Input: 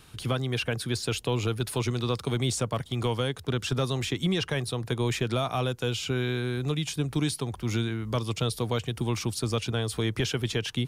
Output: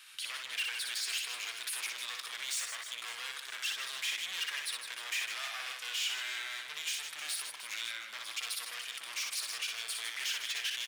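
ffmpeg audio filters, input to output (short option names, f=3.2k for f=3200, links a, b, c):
-af "volume=33.5dB,asoftclip=hard,volume=-33.5dB,highpass=f=1.9k:t=q:w=1.5,aecho=1:1:60|156|309.6|555.4|948.6:0.631|0.398|0.251|0.158|0.1"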